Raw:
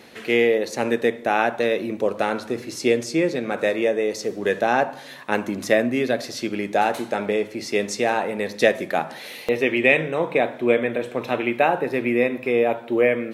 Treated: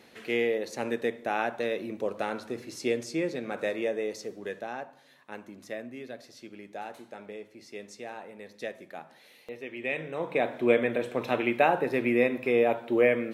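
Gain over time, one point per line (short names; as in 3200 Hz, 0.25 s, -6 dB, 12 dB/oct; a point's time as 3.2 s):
4.06 s -9 dB
4.86 s -19.5 dB
9.7 s -19.5 dB
10 s -13 dB
10.58 s -4 dB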